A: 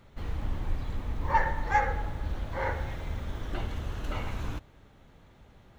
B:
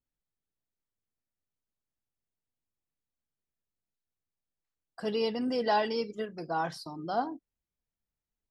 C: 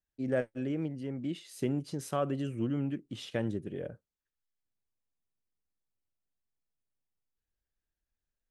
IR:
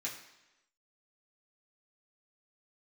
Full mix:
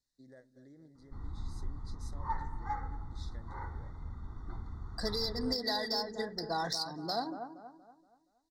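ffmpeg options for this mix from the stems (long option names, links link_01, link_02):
-filter_complex "[0:a]aecho=1:1:0.9:0.82,acontrast=34,adelay=950,volume=-18.5dB[link_01];[1:a]volume=-1dB,asplit=2[link_02][link_03];[link_03]volume=-12dB[link_04];[2:a]acompressor=threshold=-34dB:ratio=4,volume=-20dB,asplit=3[link_05][link_06][link_07];[link_06]volume=-18.5dB[link_08];[link_07]volume=-12.5dB[link_09];[link_02][link_05]amix=inputs=2:normalize=0,aexciter=amount=10.4:drive=3.8:freq=2100,acompressor=threshold=-29dB:ratio=4,volume=0dB[link_10];[3:a]atrim=start_sample=2205[link_11];[link_08][link_11]afir=irnorm=-1:irlink=0[link_12];[link_04][link_09]amix=inputs=2:normalize=0,aecho=0:1:236|472|708|944|1180:1|0.39|0.152|0.0593|0.0231[link_13];[link_01][link_10][link_12][link_13]amix=inputs=4:normalize=0,adynamicsmooth=sensitivity=2:basefreq=3900,asuperstop=centerf=2700:order=12:qfactor=1.6"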